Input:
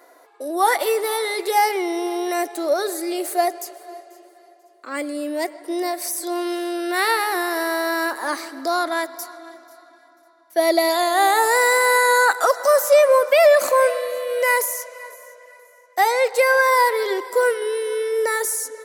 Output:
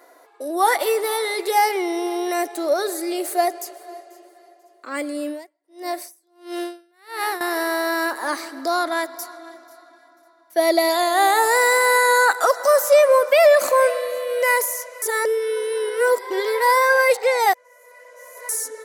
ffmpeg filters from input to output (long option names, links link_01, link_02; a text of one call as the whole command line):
ffmpeg -i in.wav -filter_complex "[0:a]asettb=1/sr,asplit=3[link_01][link_02][link_03];[link_01]atrim=end=5.274[link_04];[link_02]atrim=start=5.27:end=7.41,asetpts=PTS-STARTPTS,afade=type=in:duration=0.004:curve=qsin,afade=type=out:start_time=2.136:duration=0.004:curve=qsin,aeval=exprs='val(0)*pow(10,-39*(0.5-0.5*cos(2*PI*1.5*n/s))/20)':channel_layout=same[link_05];[link_03]atrim=start=7.406[link_06];[link_04][link_05]acrossfade=duration=0.004:curve1=hsin:curve2=qsin[link_07];[link_07][link_06]acrossfade=duration=0.004:curve1=qsin:curve2=hsin,asplit=3[link_08][link_09][link_10];[link_08]atrim=end=15.022[link_11];[link_09]atrim=start=15.018:end=18.492,asetpts=PTS-STARTPTS,areverse[link_12];[link_10]atrim=start=18.488[link_13];[link_11][link_12]acrossfade=duration=0.004:curve1=hsin:curve2=hsin[link_14];[link_14][link_13]acrossfade=duration=0.004:curve1=hsin:curve2=hsin" out.wav